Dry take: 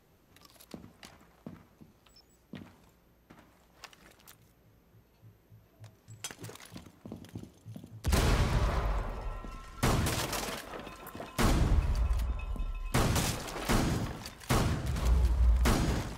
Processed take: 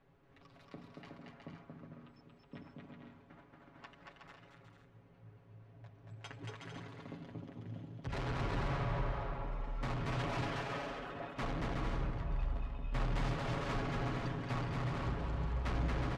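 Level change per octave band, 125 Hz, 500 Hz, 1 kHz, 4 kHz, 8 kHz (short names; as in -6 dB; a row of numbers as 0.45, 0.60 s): -6.5, -4.5, -4.0, -10.0, -20.5 dB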